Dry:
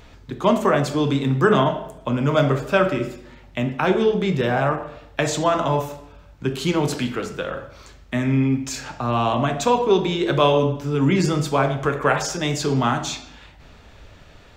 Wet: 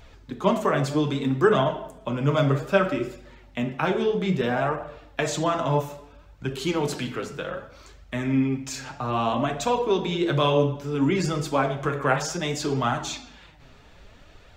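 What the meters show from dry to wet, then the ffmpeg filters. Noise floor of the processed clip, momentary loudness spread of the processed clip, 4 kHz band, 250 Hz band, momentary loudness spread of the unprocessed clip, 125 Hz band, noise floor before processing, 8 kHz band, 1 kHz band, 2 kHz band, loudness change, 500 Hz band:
−51 dBFS, 12 LU, −4.0 dB, −4.0 dB, 11 LU, −4.5 dB, −47 dBFS, −4.0 dB, −4.0 dB, −4.0 dB, −4.0 dB, −4.0 dB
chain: -af "flanger=delay=1.2:depth=6.7:regen=42:speed=0.62:shape=triangular"

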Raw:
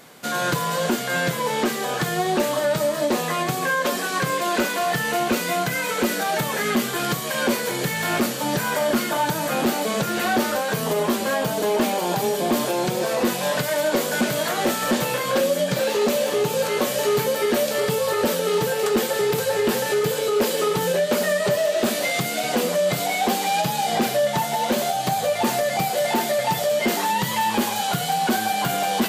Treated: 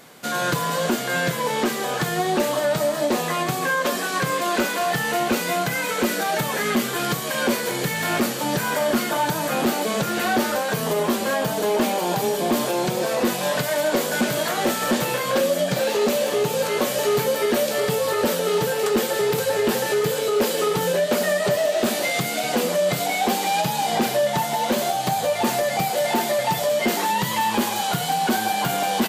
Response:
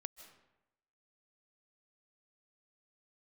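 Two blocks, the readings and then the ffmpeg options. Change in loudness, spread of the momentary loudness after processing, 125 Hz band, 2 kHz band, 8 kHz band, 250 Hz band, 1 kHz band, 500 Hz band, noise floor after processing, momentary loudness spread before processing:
0.0 dB, 2 LU, 0.0 dB, 0.0 dB, 0.0 dB, 0.0 dB, 0.0 dB, 0.0 dB, −27 dBFS, 2 LU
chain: -filter_complex "[0:a]asplit=4[link_01][link_02][link_03][link_04];[link_02]adelay=158,afreqshift=120,volume=-17.5dB[link_05];[link_03]adelay=316,afreqshift=240,volume=-25.2dB[link_06];[link_04]adelay=474,afreqshift=360,volume=-33dB[link_07];[link_01][link_05][link_06][link_07]amix=inputs=4:normalize=0"

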